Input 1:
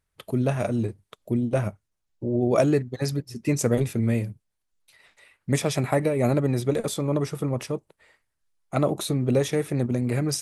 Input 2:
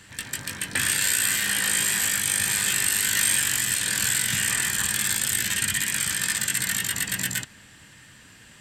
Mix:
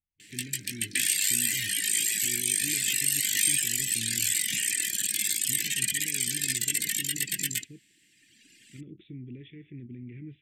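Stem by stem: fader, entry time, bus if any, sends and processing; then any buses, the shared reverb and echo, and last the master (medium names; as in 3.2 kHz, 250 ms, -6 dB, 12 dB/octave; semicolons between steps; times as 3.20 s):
-14.5 dB, 0.00 s, no send, Chebyshev low-pass 3.5 kHz, order 8; peak limiter -17.5 dBFS, peak gain reduction 9 dB
+0.5 dB, 0.20 s, no send, reverb removal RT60 1.9 s; high-pass 270 Hz 12 dB/octave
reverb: none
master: elliptic band-stop 340–2100 Hz, stop band 60 dB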